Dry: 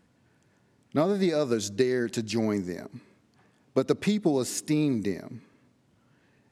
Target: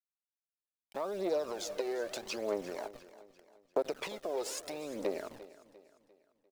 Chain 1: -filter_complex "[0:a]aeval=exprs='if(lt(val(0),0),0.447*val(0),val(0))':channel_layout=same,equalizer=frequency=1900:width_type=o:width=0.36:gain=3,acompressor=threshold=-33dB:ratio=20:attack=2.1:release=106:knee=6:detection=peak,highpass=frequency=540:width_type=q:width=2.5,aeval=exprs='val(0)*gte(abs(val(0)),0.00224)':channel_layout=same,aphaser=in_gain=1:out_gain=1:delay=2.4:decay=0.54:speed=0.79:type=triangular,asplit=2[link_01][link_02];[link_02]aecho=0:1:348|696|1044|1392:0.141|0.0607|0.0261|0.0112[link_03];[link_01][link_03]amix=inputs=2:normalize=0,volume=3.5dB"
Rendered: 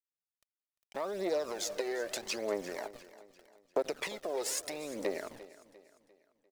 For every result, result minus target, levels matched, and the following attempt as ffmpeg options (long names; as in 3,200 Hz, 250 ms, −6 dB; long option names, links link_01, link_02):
8,000 Hz band +4.5 dB; 2,000 Hz band +3.0 dB
-filter_complex "[0:a]aeval=exprs='if(lt(val(0),0),0.447*val(0),val(0))':channel_layout=same,equalizer=frequency=1900:width_type=o:width=0.36:gain=3,acompressor=threshold=-33dB:ratio=20:attack=2.1:release=106:knee=6:detection=peak,highpass=frequency=540:width_type=q:width=2.5,highshelf=frequency=5800:gain=-9.5,aeval=exprs='val(0)*gte(abs(val(0)),0.00224)':channel_layout=same,aphaser=in_gain=1:out_gain=1:delay=2.4:decay=0.54:speed=0.79:type=triangular,asplit=2[link_01][link_02];[link_02]aecho=0:1:348|696|1044|1392:0.141|0.0607|0.0261|0.0112[link_03];[link_01][link_03]amix=inputs=2:normalize=0,volume=3.5dB"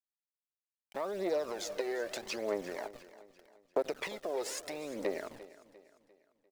2,000 Hz band +3.0 dB
-filter_complex "[0:a]aeval=exprs='if(lt(val(0),0),0.447*val(0),val(0))':channel_layout=same,equalizer=frequency=1900:width_type=o:width=0.36:gain=-5.5,acompressor=threshold=-33dB:ratio=20:attack=2.1:release=106:knee=6:detection=peak,highpass=frequency=540:width_type=q:width=2.5,highshelf=frequency=5800:gain=-9.5,aeval=exprs='val(0)*gte(abs(val(0)),0.00224)':channel_layout=same,aphaser=in_gain=1:out_gain=1:delay=2.4:decay=0.54:speed=0.79:type=triangular,asplit=2[link_01][link_02];[link_02]aecho=0:1:348|696|1044|1392:0.141|0.0607|0.0261|0.0112[link_03];[link_01][link_03]amix=inputs=2:normalize=0,volume=3.5dB"